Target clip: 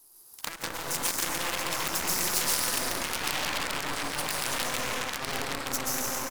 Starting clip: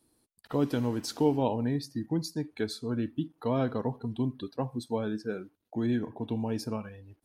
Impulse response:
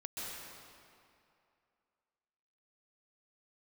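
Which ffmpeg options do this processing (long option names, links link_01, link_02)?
-filter_complex "[0:a]aeval=exprs='max(val(0),0)':channel_layout=same,aecho=1:1:157|314|471|628|785|942|1099|1256:0.631|0.353|0.198|0.111|0.0621|0.0347|0.0195|0.0109,asetrate=50715,aresample=44100,equalizer=frequency=1000:width_type=o:width=1:gain=10,equalizer=frequency=2000:width_type=o:width=1:gain=-3,equalizer=frequency=8000:width_type=o:width=1:gain=4[link_01];[1:a]atrim=start_sample=2205[link_02];[link_01][link_02]afir=irnorm=-1:irlink=0,acompressor=threshold=-45dB:ratio=4,aeval=exprs='0.0168*(cos(1*acos(clip(val(0)/0.0168,-1,1)))-cos(1*PI/2))+0.00422*(cos(3*acos(clip(val(0)/0.0168,-1,1)))-cos(3*PI/2))+0.00596*(cos(4*acos(clip(val(0)/0.0168,-1,1)))-cos(4*PI/2))+0.00211*(cos(5*acos(clip(val(0)/0.0168,-1,1)))-cos(5*PI/2))':channel_layout=same,dynaudnorm=framelen=370:gausssize=9:maxgain=5.5dB,aeval=exprs='0.0237*(abs(mod(val(0)/0.0237+3,4)-2)-1)':channel_layout=same,crystalizer=i=8.5:c=0,volume=5.5dB"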